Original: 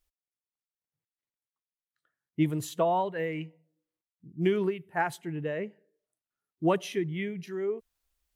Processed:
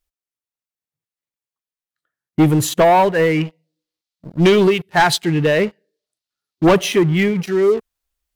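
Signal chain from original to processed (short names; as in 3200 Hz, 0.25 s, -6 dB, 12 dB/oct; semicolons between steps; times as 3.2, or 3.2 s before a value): 3.45–6.71 bell 4300 Hz +13.5 dB 1.2 oct; sample leveller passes 3; gain +6.5 dB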